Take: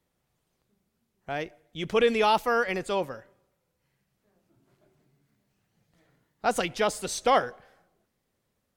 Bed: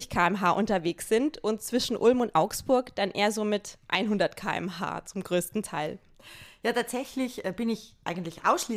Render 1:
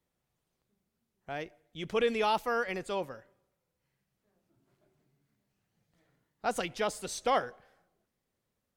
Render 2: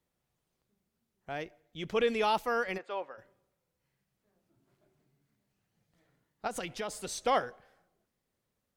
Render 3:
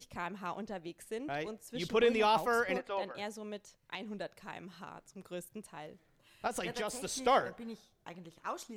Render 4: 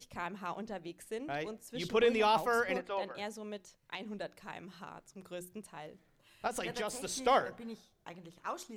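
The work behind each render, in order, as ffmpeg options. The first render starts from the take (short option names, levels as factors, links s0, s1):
-af "volume=0.501"
-filter_complex "[0:a]asettb=1/sr,asplit=3[s0][s1][s2];[s0]atrim=end=1.454[s3];[s1]atrim=start=1.45:end=2.1,asetpts=PTS-STARTPTS,afade=t=in:d=0.004:c=qsin,afade=t=out:st=0.646:d=0.004:c=qsin,equalizer=f=9100:w=3.2:g=-6.5[s4];[s2]atrim=start=2.096[s5];[s3][s4]acrossfade=d=0.004:c1=hsin:c2=qsin[s6];[s6][s5]acrossfade=d=0.004:c1=qsin:c2=hsin,asplit=3[s7][s8][s9];[s7]afade=t=out:st=2.77:d=0.02[s10];[s8]highpass=550,lowpass=2400,afade=t=in:st=2.77:d=0.02,afade=t=out:st=3.17:d=0.02[s11];[s9]afade=t=in:st=3.17:d=0.02[s12];[s10][s11][s12]amix=inputs=3:normalize=0,asettb=1/sr,asplit=3[s13][s14][s15];[s13]atrim=end=6.474[s16];[s14]atrim=start=6.47:end=7.09,asetpts=PTS-STARTPTS,afade=t=in:d=0.004:c=qsin,afade=t=out:st=0.616:d=0.004:c=qsin,acompressor=threshold=0.0251:ratio=6:attack=3.2:release=140:knee=1:detection=peak[s17];[s15]atrim=start=7.086[s18];[s16][s17]acrossfade=d=0.004:c1=hsin:c2=qsin[s19];[s19][s18]acrossfade=d=0.004:c1=qsin:c2=hsin"
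-filter_complex "[1:a]volume=0.158[s0];[0:a][s0]amix=inputs=2:normalize=0"
-af "bandreject=f=60:t=h:w=6,bandreject=f=120:t=h:w=6,bandreject=f=180:t=h:w=6,bandreject=f=240:t=h:w=6,bandreject=f=300:t=h:w=6,bandreject=f=360:t=h:w=6"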